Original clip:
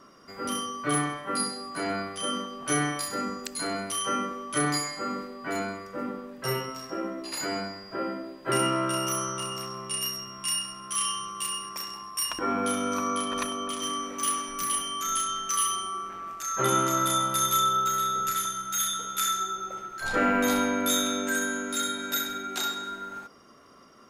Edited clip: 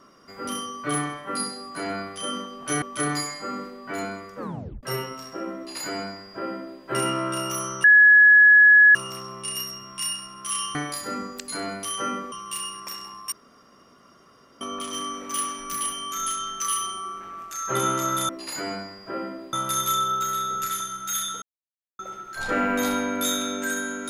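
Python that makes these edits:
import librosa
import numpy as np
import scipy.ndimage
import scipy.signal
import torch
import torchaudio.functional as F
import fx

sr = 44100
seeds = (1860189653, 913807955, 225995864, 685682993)

y = fx.edit(x, sr, fx.move(start_s=2.82, length_s=1.57, to_s=11.21),
    fx.tape_stop(start_s=5.95, length_s=0.45),
    fx.duplicate(start_s=7.14, length_s=1.24, to_s=17.18),
    fx.insert_tone(at_s=9.41, length_s=1.11, hz=1690.0, db=-9.5),
    fx.room_tone_fill(start_s=12.21, length_s=1.29),
    fx.silence(start_s=19.07, length_s=0.57), tone=tone)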